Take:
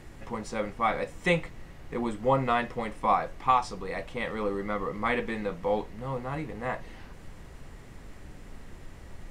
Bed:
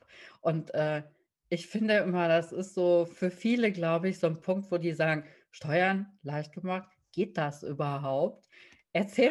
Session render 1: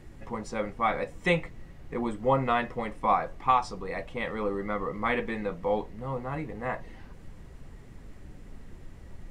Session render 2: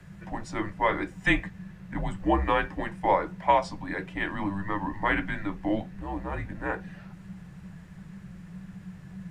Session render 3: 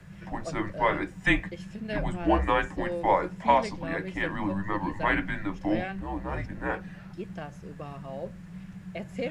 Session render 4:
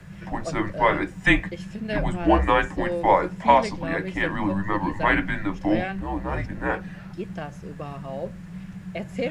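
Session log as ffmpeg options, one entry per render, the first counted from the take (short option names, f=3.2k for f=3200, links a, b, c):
-af "afftdn=nr=6:nf=-47"
-filter_complex "[0:a]afreqshift=-200,acrossover=split=170|580|2300[a][b][c][d];[c]crystalizer=i=6.5:c=0[e];[a][b][e][d]amix=inputs=4:normalize=0"
-filter_complex "[1:a]volume=-9dB[a];[0:a][a]amix=inputs=2:normalize=0"
-af "volume=5dB"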